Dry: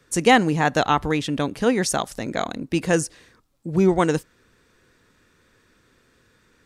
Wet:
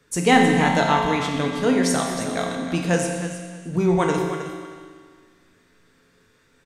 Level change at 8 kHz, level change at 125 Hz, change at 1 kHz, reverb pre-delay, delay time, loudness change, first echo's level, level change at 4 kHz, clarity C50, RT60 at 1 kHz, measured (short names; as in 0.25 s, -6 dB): 0.0 dB, +1.5 dB, +1.0 dB, 4 ms, 0.314 s, +0.5 dB, -11.0 dB, +0.5 dB, 2.0 dB, 1.9 s